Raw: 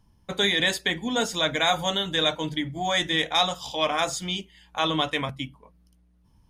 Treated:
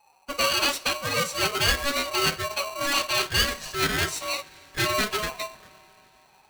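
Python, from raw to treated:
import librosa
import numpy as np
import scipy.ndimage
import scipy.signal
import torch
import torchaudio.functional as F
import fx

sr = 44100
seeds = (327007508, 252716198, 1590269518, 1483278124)

y = fx.pitch_keep_formants(x, sr, semitones=7.0)
y = fx.rev_double_slope(y, sr, seeds[0], early_s=0.44, late_s=4.7, knee_db=-18, drr_db=13.5)
y = y * np.sign(np.sin(2.0 * np.pi * 850.0 * np.arange(len(y)) / sr))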